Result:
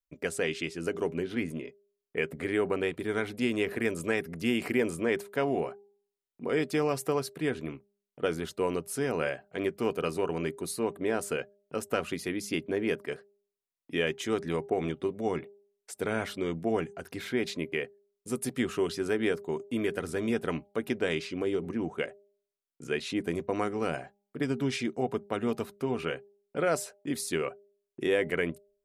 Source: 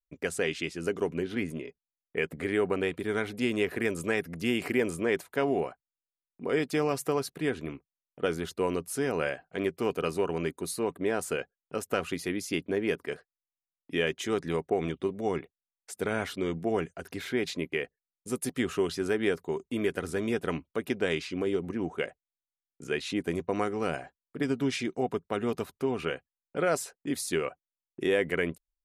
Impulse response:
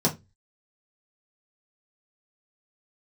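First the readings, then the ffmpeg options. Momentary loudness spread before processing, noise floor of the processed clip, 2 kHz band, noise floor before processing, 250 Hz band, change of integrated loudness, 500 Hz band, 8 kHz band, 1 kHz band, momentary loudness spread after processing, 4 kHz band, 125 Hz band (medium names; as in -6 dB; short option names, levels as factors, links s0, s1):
8 LU, under -85 dBFS, -1.0 dB, under -85 dBFS, 0.0 dB, -0.5 dB, -0.5 dB, -1.0 dB, -0.5 dB, 8 LU, -1.0 dB, -0.5 dB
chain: -filter_complex "[0:a]bandreject=f=201.9:t=h:w=4,bandreject=f=403.8:t=h:w=4,bandreject=f=605.7:t=h:w=4,bandreject=f=807.6:t=h:w=4,asplit=2[s0][s1];[s1]asubboost=boost=8.5:cutoff=100[s2];[1:a]atrim=start_sample=2205,atrim=end_sample=3969,asetrate=61740,aresample=44100[s3];[s2][s3]afir=irnorm=-1:irlink=0,volume=0.0316[s4];[s0][s4]amix=inputs=2:normalize=0,volume=0.891"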